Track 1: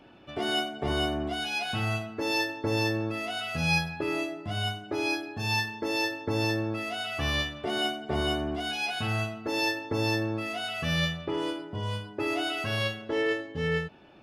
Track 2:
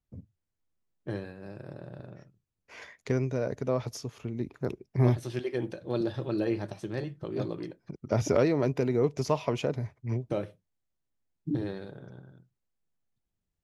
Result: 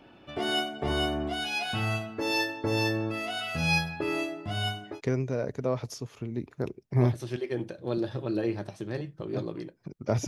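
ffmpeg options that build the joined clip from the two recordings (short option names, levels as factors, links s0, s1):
-filter_complex "[0:a]apad=whole_dur=10.27,atrim=end=10.27,atrim=end=5.01,asetpts=PTS-STARTPTS[s0];[1:a]atrim=start=2.86:end=8.3,asetpts=PTS-STARTPTS[s1];[s0][s1]acrossfade=d=0.18:c1=tri:c2=tri"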